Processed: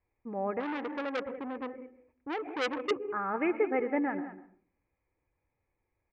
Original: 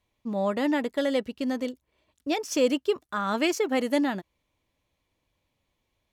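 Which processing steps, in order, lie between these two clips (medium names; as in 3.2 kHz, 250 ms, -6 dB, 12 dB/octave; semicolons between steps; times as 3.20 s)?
Chebyshev low-pass 2.4 kHz, order 6; comb 2.4 ms, depth 43%; delay 197 ms -13.5 dB; reverberation RT60 0.45 s, pre-delay 112 ms, DRR 13.5 dB; 0.60–2.91 s: transformer saturation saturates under 2.3 kHz; trim -4.5 dB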